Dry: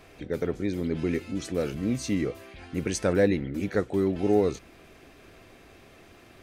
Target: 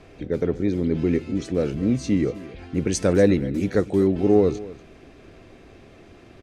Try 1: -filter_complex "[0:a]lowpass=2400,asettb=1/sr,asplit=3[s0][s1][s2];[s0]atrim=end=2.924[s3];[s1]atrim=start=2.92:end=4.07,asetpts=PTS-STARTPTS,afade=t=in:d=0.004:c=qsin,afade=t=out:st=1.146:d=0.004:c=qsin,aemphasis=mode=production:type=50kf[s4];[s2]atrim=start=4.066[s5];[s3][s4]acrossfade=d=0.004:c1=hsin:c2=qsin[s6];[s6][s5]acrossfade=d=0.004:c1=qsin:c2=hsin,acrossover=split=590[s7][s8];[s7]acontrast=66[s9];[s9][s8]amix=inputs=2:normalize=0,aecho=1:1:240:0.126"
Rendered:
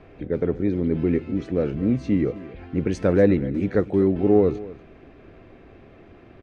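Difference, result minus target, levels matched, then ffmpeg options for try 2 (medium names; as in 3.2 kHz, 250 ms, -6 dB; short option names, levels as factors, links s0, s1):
8 kHz band -16.5 dB
-filter_complex "[0:a]lowpass=7500,asettb=1/sr,asplit=3[s0][s1][s2];[s0]atrim=end=2.924[s3];[s1]atrim=start=2.92:end=4.07,asetpts=PTS-STARTPTS,afade=t=in:d=0.004:c=qsin,afade=t=out:st=1.146:d=0.004:c=qsin,aemphasis=mode=production:type=50kf[s4];[s2]atrim=start=4.066[s5];[s3][s4]acrossfade=d=0.004:c1=hsin:c2=qsin[s6];[s6][s5]acrossfade=d=0.004:c1=qsin:c2=hsin,acrossover=split=590[s7][s8];[s7]acontrast=66[s9];[s9][s8]amix=inputs=2:normalize=0,aecho=1:1:240:0.126"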